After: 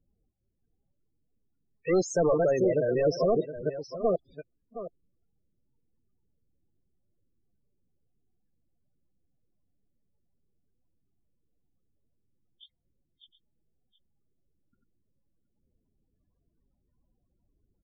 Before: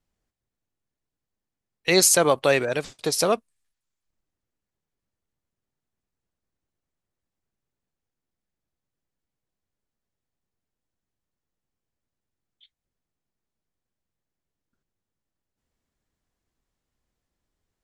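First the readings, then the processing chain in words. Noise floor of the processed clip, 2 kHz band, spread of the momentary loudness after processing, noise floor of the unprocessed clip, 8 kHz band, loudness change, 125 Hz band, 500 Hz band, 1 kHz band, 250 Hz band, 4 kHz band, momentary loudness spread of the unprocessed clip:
-77 dBFS, -13.5 dB, 18 LU, under -85 dBFS, -20.0 dB, -6.0 dB, -0.5 dB, -1.0 dB, -7.0 dB, -1.0 dB, -19.5 dB, 12 LU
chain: reverse delay 0.462 s, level -4 dB; in parallel at -2.5 dB: compressor 10:1, threshold -26 dBFS, peak gain reduction 14 dB; on the sum: soft clip -20.5 dBFS, distortion -7 dB; air absorption 110 m; echo 0.718 s -13 dB; dynamic EQ 2300 Hz, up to -6 dB, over -43 dBFS, Q 0.84; loudest bins only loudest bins 16; gain +2.5 dB

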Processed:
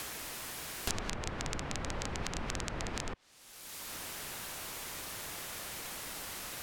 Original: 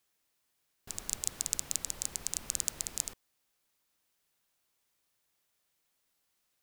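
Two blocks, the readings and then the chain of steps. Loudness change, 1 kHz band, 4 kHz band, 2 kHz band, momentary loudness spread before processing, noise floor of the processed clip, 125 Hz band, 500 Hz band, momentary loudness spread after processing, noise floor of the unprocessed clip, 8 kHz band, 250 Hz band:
-5.0 dB, +14.0 dB, +3.0 dB, +12.0 dB, 5 LU, -55 dBFS, +13.0 dB, +13.5 dB, 4 LU, -79 dBFS, -6.0 dB, +13.0 dB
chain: treble ducked by the level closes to 2000 Hz, closed at -39.5 dBFS; three-band squash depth 100%; gain +12.5 dB

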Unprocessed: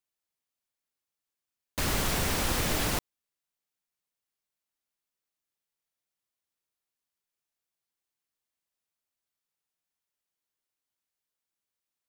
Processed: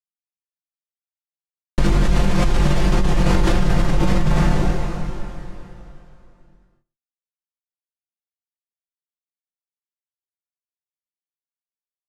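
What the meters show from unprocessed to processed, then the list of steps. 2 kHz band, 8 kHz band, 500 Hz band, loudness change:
+7.0 dB, -1.0 dB, +13.0 dB, +8.5 dB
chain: minimum comb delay 5.7 ms; tilt -3 dB/oct; requantised 8-bit, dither none; LPF 8200 Hz 12 dB/oct; doubler 21 ms -3.5 dB; echo 0.122 s -21 dB; plate-style reverb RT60 3.2 s, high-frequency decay 0.9×, DRR 5 dB; fast leveller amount 100%

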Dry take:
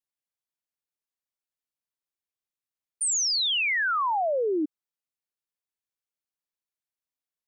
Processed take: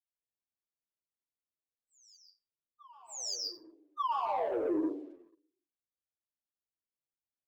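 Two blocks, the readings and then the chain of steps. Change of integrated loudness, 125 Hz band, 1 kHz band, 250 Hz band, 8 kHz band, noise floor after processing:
-10.5 dB, n/a, -6.0 dB, -2.0 dB, -15.5 dB, under -85 dBFS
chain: brick-wall FIR band-stop 1200–4600 Hz; low-pass opened by the level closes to 630 Hz, open at -28 dBFS; air absorption 170 m; plate-style reverb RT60 0.82 s, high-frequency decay 0.35×, pre-delay 0.115 s, DRR -5 dB; limiter -19.5 dBFS, peak gain reduction 11 dB; downsampling 16000 Hz; sample leveller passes 1; reverse echo 1.185 s -23.5 dB; endless flanger 9.4 ms -1.9 Hz; gain -4.5 dB

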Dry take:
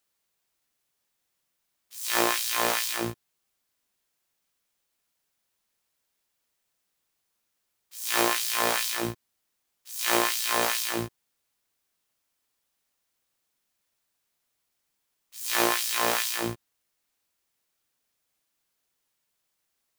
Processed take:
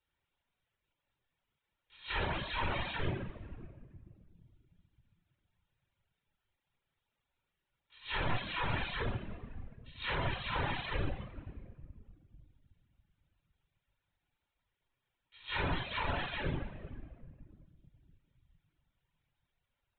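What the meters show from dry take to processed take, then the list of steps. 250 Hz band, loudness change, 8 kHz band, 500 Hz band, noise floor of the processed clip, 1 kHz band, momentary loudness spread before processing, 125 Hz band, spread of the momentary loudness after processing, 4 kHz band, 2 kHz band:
-8.0 dB, -11.5 dB, under -40 dB, -10.5 dB, under -85 dBFS, -9.0 dB, 12 LU, +5.5 dB, 17 LU, -11.5 dB, -8.0 dB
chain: compressor 5:1, threshold -28 dBFS, peak gain reduction 10 dB; LPC vocoder at 8 kHz whisper; shoebox room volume 3900 m³, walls mixed, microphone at 4.5 m; reverb removal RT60 1.1 s; gain -5 dB

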